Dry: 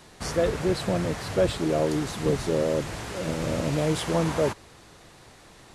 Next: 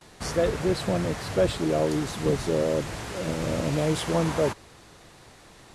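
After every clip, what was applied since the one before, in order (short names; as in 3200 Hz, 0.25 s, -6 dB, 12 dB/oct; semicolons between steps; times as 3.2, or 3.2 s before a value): gate with hold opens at -42 dBFS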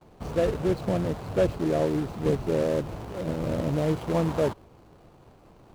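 median filter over 25 samples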